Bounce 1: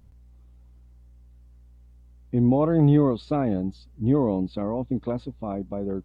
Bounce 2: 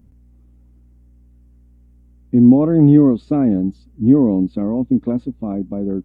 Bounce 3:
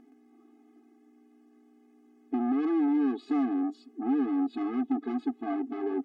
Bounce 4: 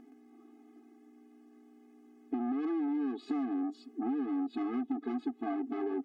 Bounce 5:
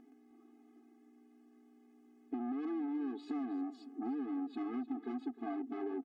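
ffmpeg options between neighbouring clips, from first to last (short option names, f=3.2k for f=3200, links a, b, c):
-af "equalizer=f=250:t=o:w=1:g=11,equalizer=f=1k:t=o:w=1:g=-4,equalizer=f=4k:t=o:w=1:g=-8,volume=1.5dB"
-filter_complex "[0:a]acompressor=threshold=-20dB:ratio=4,asplit=2[a][b];[b]highpass=f=720:p=1,volume=26dB,asoftclip=type=tanh:threshold=-13dB[c];[a][c]amix=inputs=2:normalize=0,lowpass=f=1.3k:p=1,volume=-6dB,afftfilt=real='re*eq(mod(floor(b*sr/1024/220),2),1)':imag='im*eq(mod(floor(b*sr/1024/220),2),1)':win_size=1024:overlap=0.75,volume=-6dB"
-af "acompressor=threshold=-33dB:ratio=5,volume=1.5dB"
-af "aecho=1:1:308:0.15,volume=-5dB"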